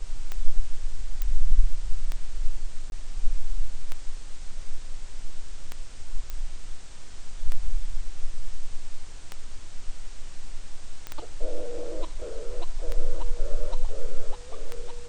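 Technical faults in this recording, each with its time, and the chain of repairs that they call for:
tick 33 1/3 rpm -17 dBFS
1.22 pop -14 dBFS
2.9–2.92 gap 21 ms
6.3 pop -19 dBFS
11.07 pop -20 dBFS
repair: de-click; interpolate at 2.9, 21 ms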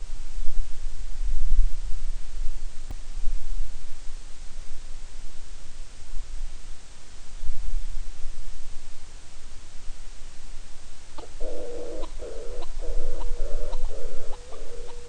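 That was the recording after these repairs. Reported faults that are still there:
none

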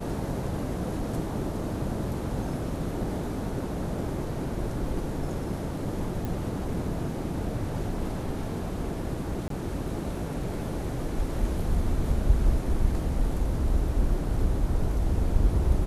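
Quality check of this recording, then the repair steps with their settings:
6.25 pop
9.48–9.5 gap 23 ms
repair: de-click; interpolate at 9.48, 23 ms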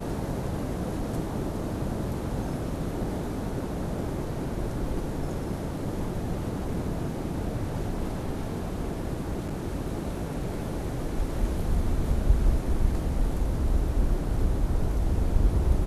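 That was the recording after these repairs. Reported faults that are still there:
none

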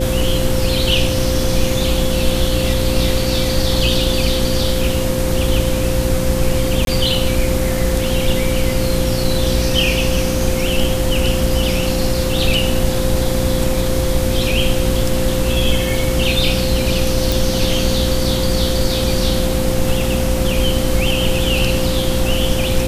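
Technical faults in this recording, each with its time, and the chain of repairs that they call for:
hum 60 Hz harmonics 6 -21 dBFS
tone 520 Hz -21 dBFS
6.85–6.87 gap 22 ms
17.32 pop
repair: de-click; de-hum 60 Hz, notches 6; notch 520 Hz, Q 30; interpolate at 6.85, 22 ms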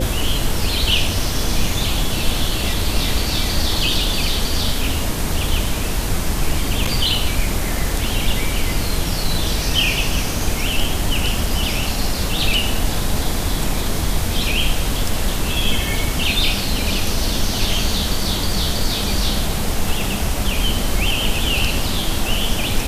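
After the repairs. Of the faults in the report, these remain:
none

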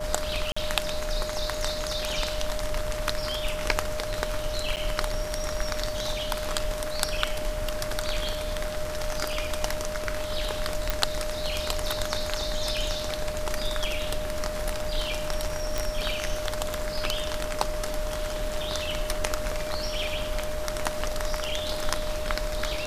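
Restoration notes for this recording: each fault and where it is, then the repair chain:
tone 610 Hz -32 dBFS
0.52–0.56 gap 45 ms
4.76–4.77 gap 8.6 ms
10.9 pop
15.78 pop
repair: de-click; notch 610 Hz, Q 30; interpolate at 0.52, 45 ms; interpolate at 4.76, 8.6 ms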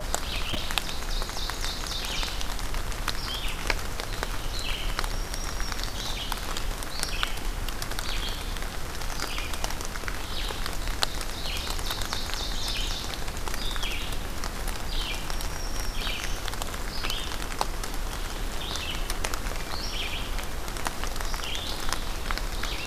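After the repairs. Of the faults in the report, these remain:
none

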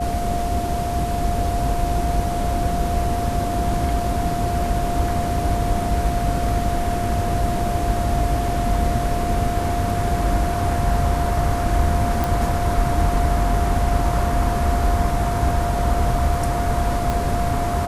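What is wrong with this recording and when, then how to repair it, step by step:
tone 700 Hz -24 dBFS
12.24 pop
17.1 pop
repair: de-click; notch 700 Hz, Q 30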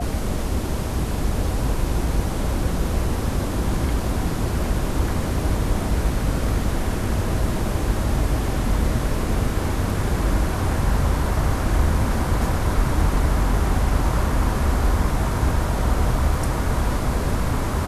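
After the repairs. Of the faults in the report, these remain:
17.1 pop

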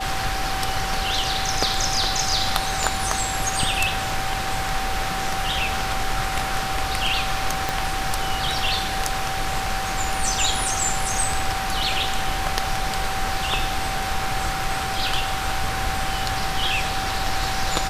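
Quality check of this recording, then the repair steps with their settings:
tone 770 Hz -28 dBFS
7.69 pop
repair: de-click; notch 770 Hz, Q 30

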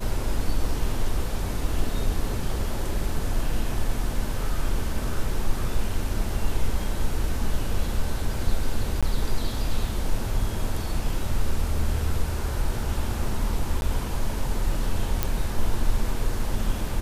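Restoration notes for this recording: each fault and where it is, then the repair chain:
9.01–9.03 gap 16 ms
13.81–13.82 gap 11 ms
15.23 pop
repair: de-click; interpolate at 9.01, 16 ms; interpolate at 13.81, 11 ms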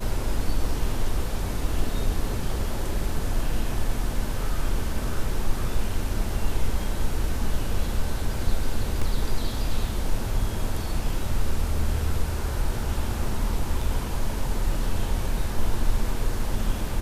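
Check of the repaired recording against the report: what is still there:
none

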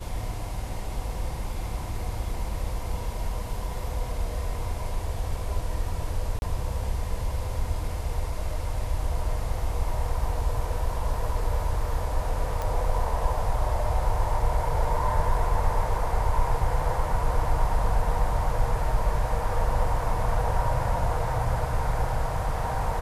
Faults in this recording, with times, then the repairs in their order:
6.39–6.42 gap 31 ms
12.62 pop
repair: de-click; interpolate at 6.39, 31 ms

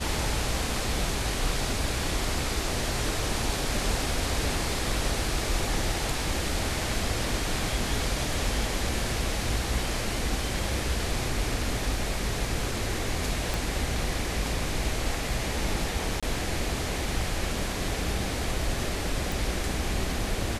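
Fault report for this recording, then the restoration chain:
13.54 pop
16.2–16.23 gap 26 ms
19.32 pop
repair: de-click; interpolate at 16.2, 26 ms

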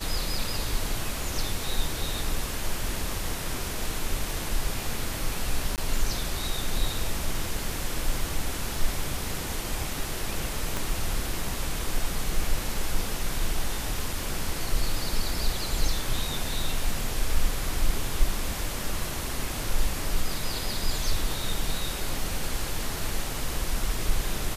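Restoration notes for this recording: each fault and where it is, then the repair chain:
5.76–5.78 gap 18 ms
10.77 pop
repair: de-click; interpolate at 5.76, 18 ms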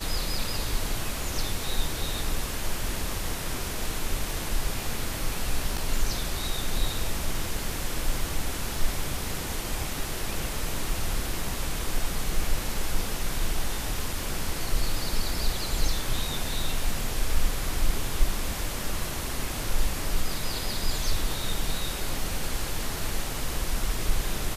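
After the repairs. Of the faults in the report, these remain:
10.77 pop

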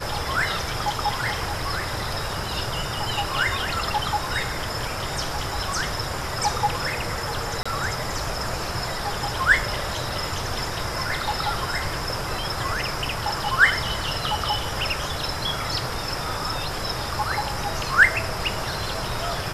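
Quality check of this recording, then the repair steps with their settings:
7.63–7.66 gap 25 ms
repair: interpolate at 7.63, 25 ms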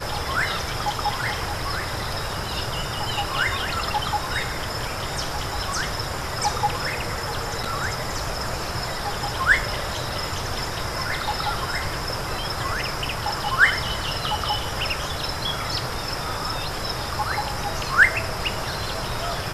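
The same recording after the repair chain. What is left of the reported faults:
none

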